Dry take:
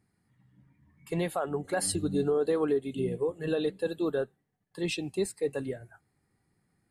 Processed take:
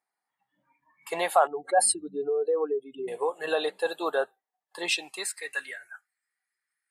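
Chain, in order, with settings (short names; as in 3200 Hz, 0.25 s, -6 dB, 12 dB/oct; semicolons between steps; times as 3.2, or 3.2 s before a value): 1.47–3.08 spectral contrast raised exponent 1.9; spectral noise reduction 16 dB; high-pass sweep 800 Hz -> 1700 Hz, 4.82–5.45; gain +7.5 dB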